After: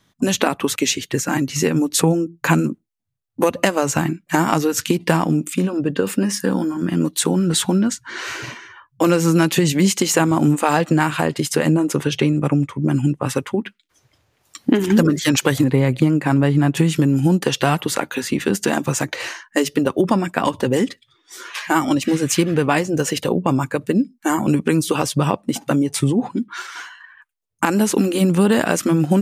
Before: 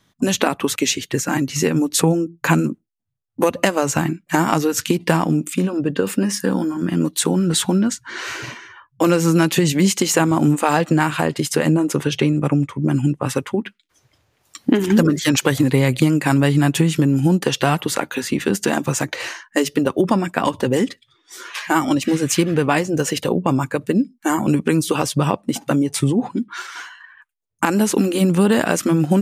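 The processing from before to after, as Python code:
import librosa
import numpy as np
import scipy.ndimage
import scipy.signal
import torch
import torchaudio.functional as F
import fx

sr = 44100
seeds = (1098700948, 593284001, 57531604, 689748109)

y = fx.high_shelf(x, sr, hz=2700.0, db=-11.5, at=(15.64, 16.77))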